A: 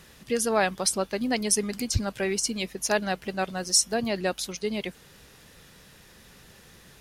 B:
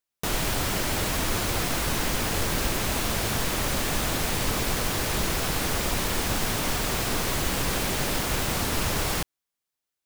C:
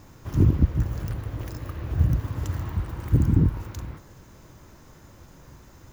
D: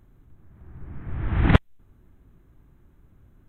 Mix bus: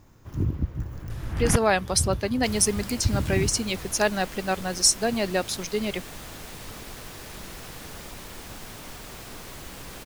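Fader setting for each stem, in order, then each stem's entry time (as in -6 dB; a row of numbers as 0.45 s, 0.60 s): +2.0 dB, -14.0 dB, -7.5 dB, -6.5 dB; 1.10 s, 2.20 s, 0.00 s, 0.00 s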